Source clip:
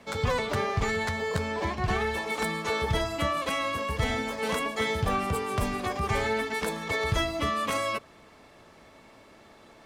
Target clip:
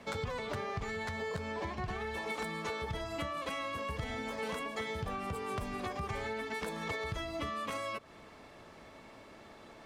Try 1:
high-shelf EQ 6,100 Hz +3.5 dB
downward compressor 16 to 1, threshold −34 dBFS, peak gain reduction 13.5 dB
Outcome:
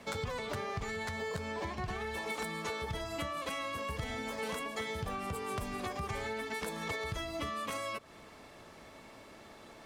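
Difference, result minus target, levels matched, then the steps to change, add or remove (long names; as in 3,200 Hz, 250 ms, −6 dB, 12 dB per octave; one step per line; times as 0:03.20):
8,000 Hz band +4.5 dB
change: high-shelf EQ 6,100 Hz −4.5 dB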